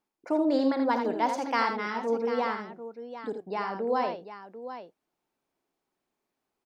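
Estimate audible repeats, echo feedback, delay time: 3, no regular repeats, 52 ms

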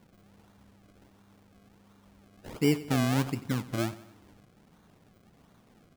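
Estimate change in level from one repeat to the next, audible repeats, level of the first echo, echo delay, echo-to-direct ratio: -6.0 dB, 3, -16.5 dB, 91 ms, -15.5 dB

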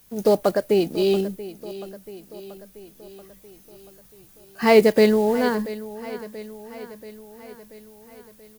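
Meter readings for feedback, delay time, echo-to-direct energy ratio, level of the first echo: 59%, 683 ms, -14.0 dB, -16.0 dB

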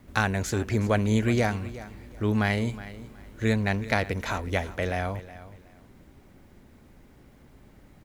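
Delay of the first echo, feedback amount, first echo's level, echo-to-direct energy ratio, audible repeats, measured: 367 ms, 23%, -16.0 dB, -16.0 dB, 2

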